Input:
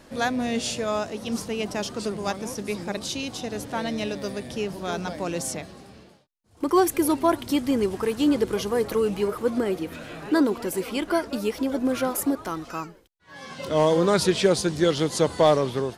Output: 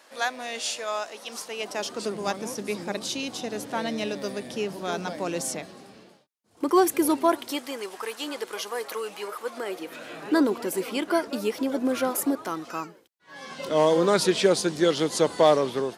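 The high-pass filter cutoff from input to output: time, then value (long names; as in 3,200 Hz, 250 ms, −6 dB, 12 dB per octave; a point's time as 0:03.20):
0:01.42 710 Hz
0:02.22 190 Hz
0:07.08 190 Hz
0:07.77 760 Hz
0:09.52 760 Hz
0:10.31 210 Hz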